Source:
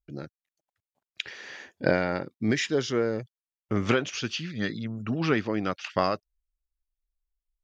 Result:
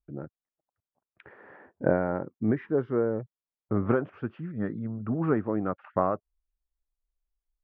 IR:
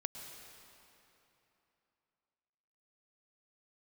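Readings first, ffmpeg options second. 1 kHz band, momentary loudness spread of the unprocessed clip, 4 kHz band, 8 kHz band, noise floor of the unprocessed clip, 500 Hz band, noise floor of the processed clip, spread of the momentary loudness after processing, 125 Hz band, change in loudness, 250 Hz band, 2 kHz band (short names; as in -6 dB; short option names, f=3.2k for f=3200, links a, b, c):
-1.5 dB, 12 LU, under -30 dB, n/a, under -85 dBFS, 0.0 dB, under -85 dBFS, 10 LU, 0.0 dB, -0.5 dB, 0.0 dB, -9.5 dB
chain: -af "lowpass=f=1.3k:w=0.5412,lowpass=f=1.3k:w=1.3066"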